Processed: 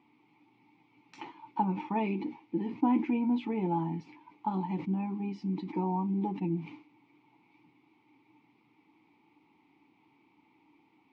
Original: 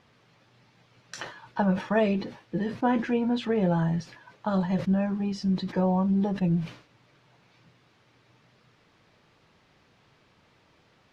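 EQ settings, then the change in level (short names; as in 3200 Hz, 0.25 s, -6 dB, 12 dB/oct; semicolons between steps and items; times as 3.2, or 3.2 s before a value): vowel filter u; +9.0 dB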